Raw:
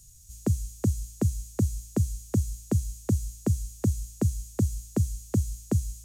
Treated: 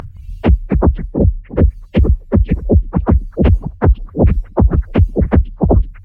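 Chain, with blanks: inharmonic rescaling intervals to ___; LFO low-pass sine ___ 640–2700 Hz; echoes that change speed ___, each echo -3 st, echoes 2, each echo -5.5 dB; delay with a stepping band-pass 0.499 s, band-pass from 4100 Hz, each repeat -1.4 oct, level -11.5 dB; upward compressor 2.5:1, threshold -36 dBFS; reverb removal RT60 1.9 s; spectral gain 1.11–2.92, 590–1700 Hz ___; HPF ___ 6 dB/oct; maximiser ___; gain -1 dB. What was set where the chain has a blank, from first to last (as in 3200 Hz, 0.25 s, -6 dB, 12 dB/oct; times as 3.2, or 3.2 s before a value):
126%, 0.64 Hz, 0.167 s, -9 dB, 74 Hz, +25 dB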